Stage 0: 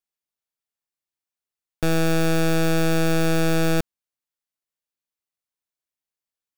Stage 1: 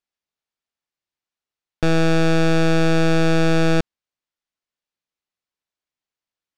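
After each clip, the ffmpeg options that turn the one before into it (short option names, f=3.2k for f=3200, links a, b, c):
-af "lowpass=5.4k,volume=3.5dB"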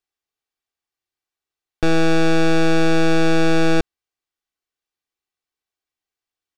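-af "aecho=1:1:2.6:0.47"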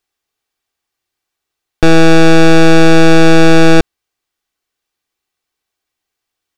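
-af "acontrast=52,volume=5dB"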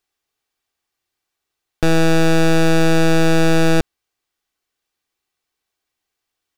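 -af "asoftclip=type=tanh:threshold=-9dB,volume=-2dB"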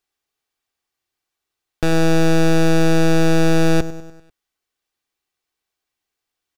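-af "aecho=1:1:98|196|294|392|490:0.168|0.0923|0.0508|0.0279|0.0154,volume=-2.5dB"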